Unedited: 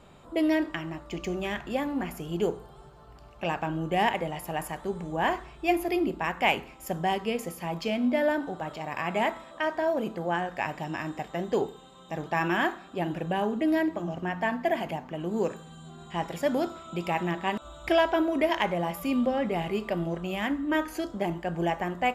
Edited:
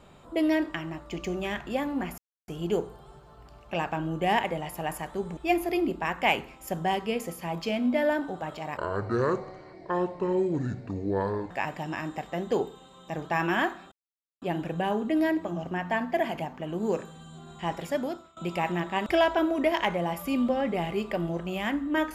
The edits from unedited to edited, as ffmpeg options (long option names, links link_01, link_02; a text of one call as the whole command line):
ffmpeg -i in.wav -filter_complex "[0:a]asplit=8[link_01][link_02][link_03][link_04][link_05][link_06][link_07][link_08];[link_01]atrim=end=2.18,asetpts=PTS-STARTPTS,afade=type=out:start_time=2.176:duration=0.004:curve=hsin,apad=pad_dur=0.3[link_09];[link_02]atrim=start=2.18:end=5.072,asetpts=PTS-STARTPTS,afade=type=in:duration=0.004:curve=hsin[link_10];[link_03]atrim=start=5.558:end=8.964[link_11];[link_04]atrim=start=8.96:end=10.52,asetpts=PTS-STARTPTS,asetrate=25137,aresample=44100[link_12];[link_05]atrim=start=10.516:end=12.93,asetpts=PTS-STARTPTS,afade=type=out:start_time=2.41:duration=0.004:curve=hsin,apad=pad_dur=0.5[link_13];[link_06]atrim=start=12.93:end=16.88,asetpts=PTS-STARTPTS,afade=type=in:duration=0.004:curve=hsin,afade=type=out:start_time=3.38:duration=0.57:silence=0.11885[link_14];[link_07]atrim=start=16.88:end=17.602,asetpts=PTS-STARTPTS,afade=type=in:duration=0.004:curve=hsin:silence=0.11885[link_15];[link_08]atrim=start=17.858[link_16];[link_09][link_10]concat=n=2:v=0:a=1[link_17];[link_17][link_11]acrossfade=duration=0.004:curve1=hsin:curve2=hsin[link_18];[link_18][link_12]acrossfade=duration=0.004:curve1=hsin:curve2=hsin[link_19];[link_13][link_14][link_15]concat=n=3:v=0:a=1[link_20];[link_19][link_20]acrossfade=duration=0.004:curve1=hsin:curve2=hsin[link_21];[link_21][link_16]acrossfade=duration=0.004:curve1=hsin:curve2=hsin" out.wav